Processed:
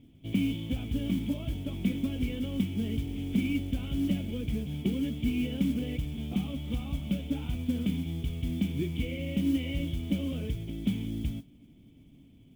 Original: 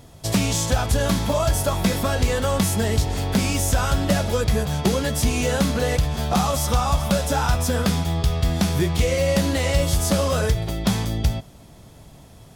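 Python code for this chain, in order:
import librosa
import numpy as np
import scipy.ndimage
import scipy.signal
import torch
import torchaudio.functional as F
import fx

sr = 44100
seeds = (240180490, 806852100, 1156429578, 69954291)

y = fx.formant_cascade(x, sr, vowel='i')
y = fx.high_shelf(y, sr, hz=2200.0, db=5.5)
y = fx.mod_noise(y, sr, seeds[0], snr_db=26)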